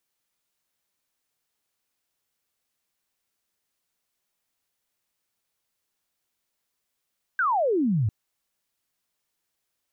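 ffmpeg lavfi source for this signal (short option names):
-f lavfi -i "aevalsrc='0.1*clip(t/0.002,0,1)*clip((0.7-t)/0.002,0,1)*sin(2*PI*1600*0.7/log(97/1600)*(exp(log(97/1600)*t/0.7)-1))':d=0.7:s=44100"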